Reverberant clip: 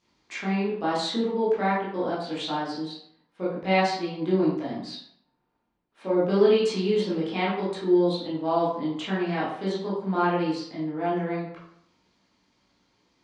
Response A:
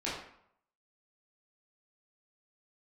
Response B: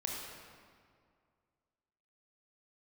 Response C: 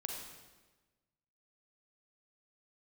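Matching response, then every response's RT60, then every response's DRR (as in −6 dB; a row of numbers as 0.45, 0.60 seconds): A; 0.70, 2.1, 1.2 seconds; −9.0, −1.5, 0.5 decibels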